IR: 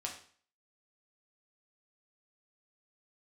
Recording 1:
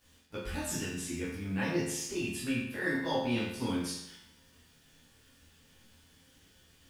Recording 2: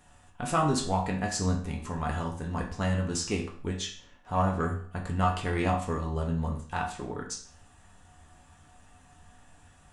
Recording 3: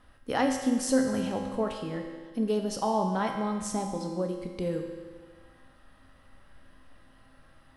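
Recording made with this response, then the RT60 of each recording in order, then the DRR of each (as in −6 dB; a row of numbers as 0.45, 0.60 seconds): 2; 0.80, 0.45, 1.6 seconds; −8.5, −1.0, 2.0 decibels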